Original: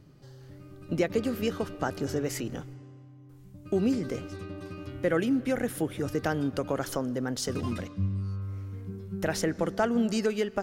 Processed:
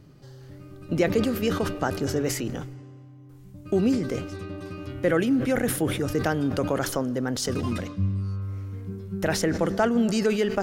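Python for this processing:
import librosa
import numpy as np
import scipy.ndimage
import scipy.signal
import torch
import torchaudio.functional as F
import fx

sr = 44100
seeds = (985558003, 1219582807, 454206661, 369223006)

y = fx.sustainer(x, sr, db_per_s=72.0)
y = y * 10.0 ** (3.5 / 20.0)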